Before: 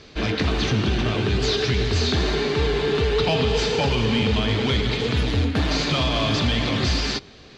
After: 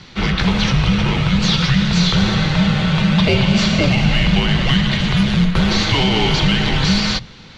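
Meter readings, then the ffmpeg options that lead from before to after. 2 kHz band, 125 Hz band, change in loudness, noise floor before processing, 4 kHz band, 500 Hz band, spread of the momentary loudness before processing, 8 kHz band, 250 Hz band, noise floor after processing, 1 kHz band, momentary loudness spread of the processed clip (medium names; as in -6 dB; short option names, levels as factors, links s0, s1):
+7.0 dB, +7.5 dB, +6.0 dB, -46 dBFS, +6.0 dB, -1.5 dB, 2 LU, +5.5 dB, +9.0 dB, -40 dBFS, +5.0 dB, 2 LU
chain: -af "bandreject=f=48.43:t=h:w=4,bandreject=f=96.86:t=h:w=4,bandreject=f=145.29:t=h:w=4,bandreject=f=193.72:t=h:w=4,bandreject=f=242.15:t=h:w=4,bandreject=f=290.58:t=h:w=4,bandreject=f=339.01:t=h:w=4,bandreject=f=387.44:t=h:w=4,afreqshift=-260,volume=2.11"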